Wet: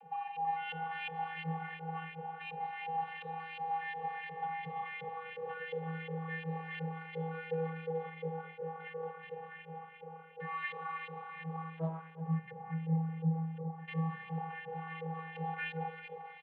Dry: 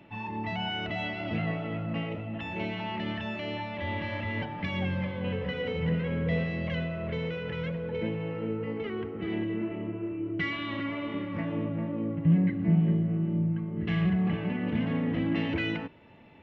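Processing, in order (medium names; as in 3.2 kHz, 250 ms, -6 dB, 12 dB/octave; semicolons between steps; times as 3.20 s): upward compressor, threshold -36 dBFS; frequency-shifting echo 222 ms, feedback 56%, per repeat +48 Hz, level -6 dB; flange 0.24 Hz, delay 5.2 ms, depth 2.4 ms, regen +76%; distance through air 70 m; on a send: frequency-shifting echo 160 ms, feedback 61%, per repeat +140 Hz, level -22.5 dB; on the sum: LFO band-pass saw up 2.8 Hz 400–3000 Hz; resonant low shelf 520 Hz -8 dB, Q 3; vocoder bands 32, square 162 Hz; 11.77–12.21 s: loudspeaker Doppler distortion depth 0.52 ms; trim +7.5 dB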